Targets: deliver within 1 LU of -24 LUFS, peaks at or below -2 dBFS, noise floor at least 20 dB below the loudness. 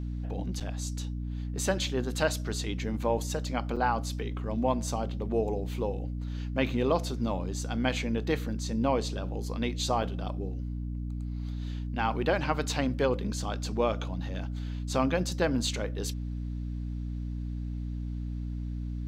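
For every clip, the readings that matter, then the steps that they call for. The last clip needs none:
dropouts 3; longest dropout 6.3 ms; hum 60 Hz; harmonics up to 300 Hz; hum level -32 dBFS; loudness -31.5 LUFS; peak -12.0 dBFS; loudness target -24.0 LUFS
-> interpolate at 0.6/3.76/10.03, 6.3 ms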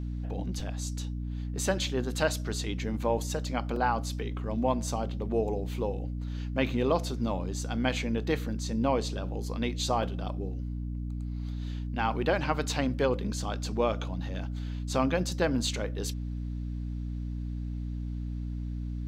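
dropouts 0; hum 60 Hz; harmonics up to 300 Hz; hum level -32 dBFS
-> notches 60/120/180/240/300 Hz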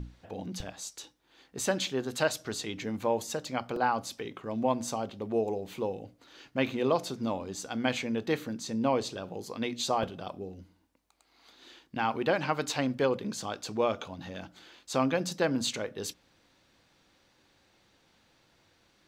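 hum none; loudness -32.0 LUFS; peak -11.5 dBFS; loudness target -24.0 LUFS
-> gain +8 dB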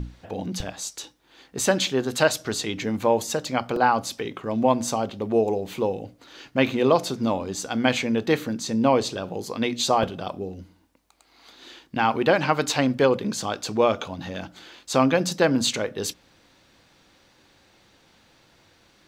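loudness -24.0 LUFS; peak -3.5 dBFS; noise floor -60 dBFS

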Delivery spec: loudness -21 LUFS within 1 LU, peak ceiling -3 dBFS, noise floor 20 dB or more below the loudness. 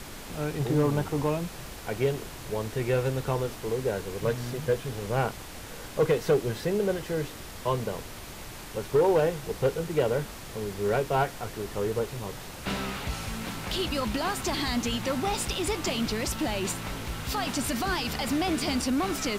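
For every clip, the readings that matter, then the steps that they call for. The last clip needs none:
clipped 0.3%; flat tops at -16.5 dBFS; noise floor -42 dBFS; noise floor target -49 dBFS; loudness -29.0 LUFS; peak -16.5 dBFS; loudness target -21.0 LUFS
-> clip repair -16.5 dBFS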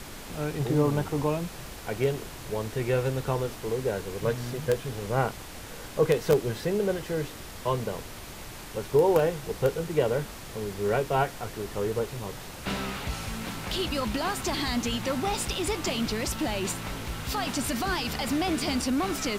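clipped 0.0%; noise floor -42 dBFS; noise floor target -49 dBFS
-> noise print and reduce 7 dB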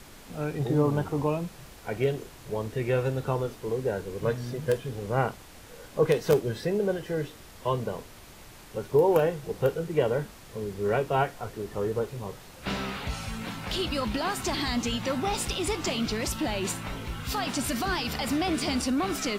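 noise floor -48 dBFS; noise floor target -49 dBFS
-> noise print and reduce 6 dB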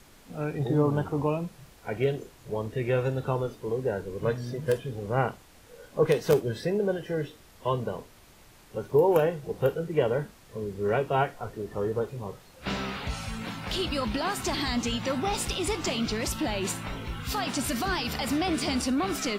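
noise floor -54 dBFS; loudness -29.0 LUFS; peak -7.5 dBFS; loudness target -21.0 LUFS
-> gain +8 dB; limiter -3 dBFS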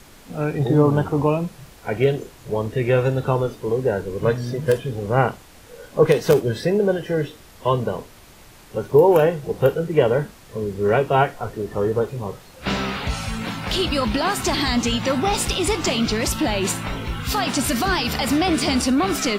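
loudness -21.0 LUFS; peak -3.0 dBFS; noise floor -46 dBFS

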